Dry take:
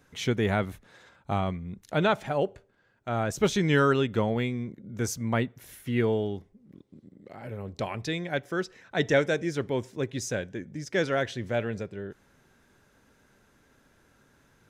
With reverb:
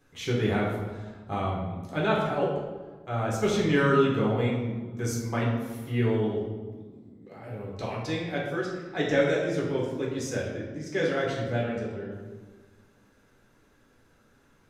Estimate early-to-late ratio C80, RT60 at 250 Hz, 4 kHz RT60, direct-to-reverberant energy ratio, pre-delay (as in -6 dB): 4.5 dB, 1.9 s, 0.90 s, -5.0 dB, 3 ms